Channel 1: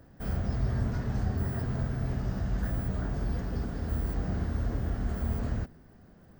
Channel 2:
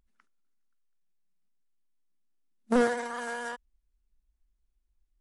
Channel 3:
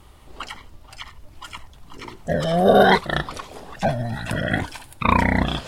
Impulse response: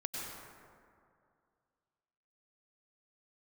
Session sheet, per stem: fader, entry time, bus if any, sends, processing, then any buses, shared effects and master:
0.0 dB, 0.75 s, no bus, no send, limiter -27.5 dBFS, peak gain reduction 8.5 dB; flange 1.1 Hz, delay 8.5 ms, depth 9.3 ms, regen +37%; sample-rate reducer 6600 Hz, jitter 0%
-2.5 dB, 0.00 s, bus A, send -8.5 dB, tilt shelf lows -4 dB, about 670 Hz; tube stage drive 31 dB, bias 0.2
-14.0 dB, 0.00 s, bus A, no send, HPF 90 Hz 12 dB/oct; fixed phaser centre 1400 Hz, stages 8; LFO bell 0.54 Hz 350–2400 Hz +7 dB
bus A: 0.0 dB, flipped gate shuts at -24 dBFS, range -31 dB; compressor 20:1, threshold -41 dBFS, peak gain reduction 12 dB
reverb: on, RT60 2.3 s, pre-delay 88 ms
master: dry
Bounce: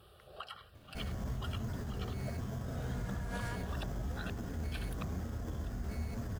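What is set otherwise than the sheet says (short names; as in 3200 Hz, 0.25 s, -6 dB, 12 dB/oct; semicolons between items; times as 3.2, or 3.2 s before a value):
stem 2: send -8.5 dB -> -16.5 dB; stem 3 -14.0 dB -> -6.0 dB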